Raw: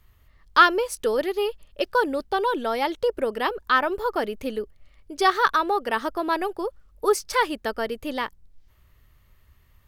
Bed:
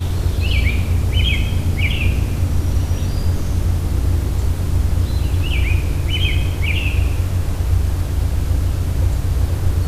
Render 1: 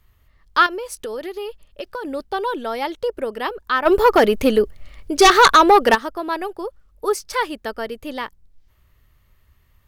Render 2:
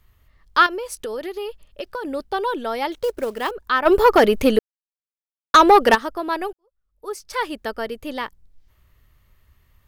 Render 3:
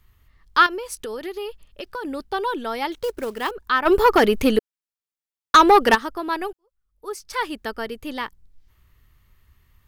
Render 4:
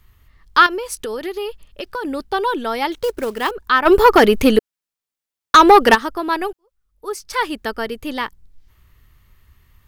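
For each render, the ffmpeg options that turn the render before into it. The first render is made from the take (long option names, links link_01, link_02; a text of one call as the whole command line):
ffmpeg -i in.wav -filter_complex "[0:a]asettb=1/sr,asplit=3[link_01][link_02][link_03];[link_01]atrim=end=0.664[link_04];[link_02]atrim=start=0.66:end=2.05,asetpts=PTS-STARTPTS,afade=type=in:duration=0.004:curve=qsin,afade=type=out:start_time=1.386:duration=0.004:curve=qsin,acompressor=threshold=-25dB:ratio=6:attack=3.2:release=140:knee=1:detection=peak[link_05];[link_03]atrim=start=2.046[link_06];[link_04][link_05]acrossfade=duration=0.004:curve1=hsin:curve2=qsin[link_07];[link_07][link_06]acrossfade=duration=0.004:curve1=qsin:curve2=hsin,asplit=3[link_08][link_09][link_10];[link_08]afade=type=out:start_time=3.85:duration=0.02[link_11];[link_09]aeval=exprs='0.531*sin(PI/2*3.16*val(0)/0.531)':channel_layout=same,afade=type=in:start_time=3.85:duration=0.02,afade=type=out:start_time=5.94:duration=0.02[link_12];[link_10]afade=type=in:start_time=5.94:duration=0.02[link_13];[link_11][link_12][link_13]amix=inputs=3:normalize=0" out.wav
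ffmpeg -i in.wav -filter_complex "[0:a]asettb=1/sr,asplit=3[link_01][link_02][link_03];[link_01]atrim=end=2.924[link_04];[link_02]atrim=start=2.92:end=3.51,asetpts=PTS-STARTPTS,afade=type=in:duration=0.004:curve=qsin,afade=type=out:start_time=0.586:duration=0.004:curve=qsin,acrusher=bits=5:mode=log:mix=0:aa=0.000001[link_05];[link_03]atrim=start=3.506[link_06];[link_04][link_05]acrossfade=duration=0.004:curve1=hsin:curve2=qsin[link_07];[link_07][link_06]acrossfade=duration=0.004:curve1=qsin:curve2=hsin,asplit=4[link_08][link_09][link_10][link_11];[link_08]atrim=end=4.59,asetpts=PTS-STARTPTS,afade=type=out:start_time=4.586:duration=0.004:curve=hsin[link_12];[link_09]atrim=start=4.59:end=5.54,asetpts=PTS-STARTPTS,volume=0[link_13];[link_10]atrim=start=5.54:end=6.53,asetpts=PTS-STARTPTS,afade=type=in:duration=0.004:curve=hsin,afade=type=out:start_time=0.986:duration=0.004:curve=hsin[link_14];[link_11]atrim=start=6.53,asetpts=PTS-STARTPTS,afade=type=in:duration=1.02:curve=qua[link_15];[link_12][link_13][link_14][link_15]concat=n=4:v=0:a=1" out.wav
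ffmpeg -i in.wav -af "equalizer=frequency=590:width_type=o:width=0.55:gain=-6.5" out.wav
ffmpeg -i in.wav -af "volume=5dB,alimiter=limit=-1dB:level=0:latency=1" out.wav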